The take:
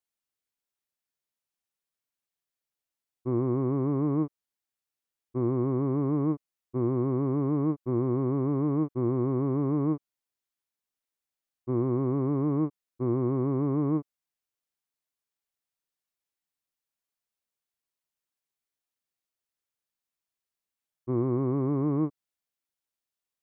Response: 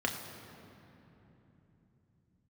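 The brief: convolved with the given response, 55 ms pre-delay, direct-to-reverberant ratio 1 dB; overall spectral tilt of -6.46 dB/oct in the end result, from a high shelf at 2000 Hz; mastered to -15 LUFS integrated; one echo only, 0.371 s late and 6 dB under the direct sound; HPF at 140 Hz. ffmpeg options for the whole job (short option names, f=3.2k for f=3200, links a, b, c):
-filter_complex "[0:a]highpass=140,highshelf=f=2k:g=8.5,aecho=1:1:371:0.501,asplit=2[a][b];[1:a]atrim=start_sample=2205,adelay=55[c];[b][c]afir=irnorm=-1:irlink=0,volume=-8dB[d];[a][d]amix=inputs=2:normalize=0,volume=10.5dB"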